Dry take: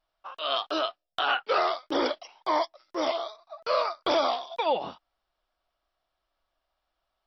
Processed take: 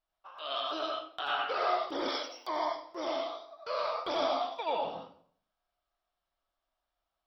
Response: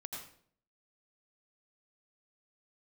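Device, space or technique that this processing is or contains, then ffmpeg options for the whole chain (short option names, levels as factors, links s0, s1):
bathroom: -filter_complex "[1:a]atrim=start_sample=2205[s0];[0:a][s0]afir=irnorm=-1:irlink=0,asettb=1/sr,asplit=3[s1][s2][s3];[s1]atrim=end=2.084[s4];[s2]atrim=start=2.08:end=2.48,asetpts=PTS-STARTPTS,afade=t=in:d=0.004:c=qsin,afade=t=out:st=0.396:d=0.004:c=qsin,aemphasis=mode=production:type=riaa[s5];[s3]atrim=start=2.476[s6];[s4][s5]acrossfade=d=0.004:c1=hsin:c2=qsin[s7];[s7][s6]acrossfade=d=0.004:c1=qsin:c2=hsin,volume=0.631"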